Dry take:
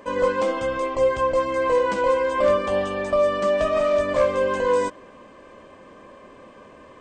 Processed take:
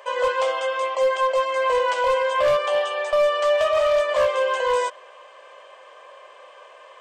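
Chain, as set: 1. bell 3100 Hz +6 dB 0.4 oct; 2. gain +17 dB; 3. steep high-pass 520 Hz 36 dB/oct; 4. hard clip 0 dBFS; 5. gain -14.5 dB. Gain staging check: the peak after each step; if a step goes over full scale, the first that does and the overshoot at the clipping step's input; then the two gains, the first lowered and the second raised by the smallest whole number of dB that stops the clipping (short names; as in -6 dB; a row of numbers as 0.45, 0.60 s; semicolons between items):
-9.5, +7.5, +7.5, 0.0, -14.5 dBFS; step 2, 7.5 dB; step 2 +9 dB, step 5 -6.5 dB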